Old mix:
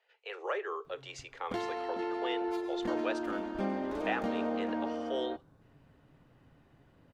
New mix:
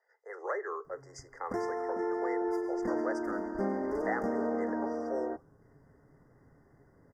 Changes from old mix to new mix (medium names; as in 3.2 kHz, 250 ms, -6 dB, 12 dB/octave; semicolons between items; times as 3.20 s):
background: add peaking EQ 420 Hz +8 dB 0.26 oct; master: add brick-wall FIR band-stop 2.1–4.7 kHz